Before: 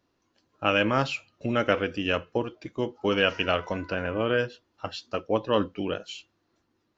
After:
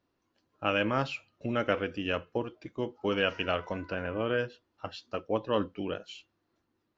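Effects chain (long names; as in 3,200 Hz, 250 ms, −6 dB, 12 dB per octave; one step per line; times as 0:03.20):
high-shelf EQ 6,500 Hz −9.5 dB
level −4.5 dB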